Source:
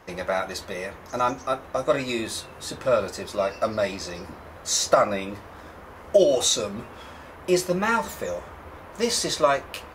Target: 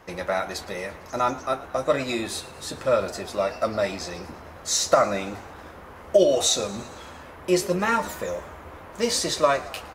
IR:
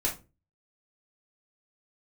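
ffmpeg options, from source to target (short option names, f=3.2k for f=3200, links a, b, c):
-filter_complex "[0:a]asplit=7[a][b][c][d][e][f][g];[b]adelay=113,afreqshift=49,volume=-19dB[h];[c]adelay=226,afreqshift=98,volume=-23.2dB[i];[d]adelay=339,afreqshift=147,volume=-27.3dB[j];[e]adelay=452,afreqshift=196,volume=-31.5dB[k];[f]adelay=565,afreqshift=245,volume=-35.6dB[l];[g]adelay=678,afreqshift=294,volume=-39.8dB[m];[a][h][i][j][k][l][m]amix=inputs=7:normalize=0"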